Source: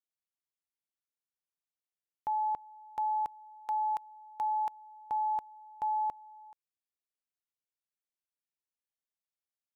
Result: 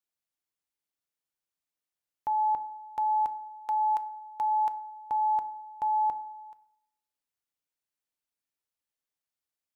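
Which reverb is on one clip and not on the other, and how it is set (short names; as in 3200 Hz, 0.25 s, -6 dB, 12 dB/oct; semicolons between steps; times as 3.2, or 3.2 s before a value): FDN reverb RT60 0.75 s, low-frequency decay 1.05×, high-frequency decay 0.45×, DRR 11 dB; gain +2.5 dB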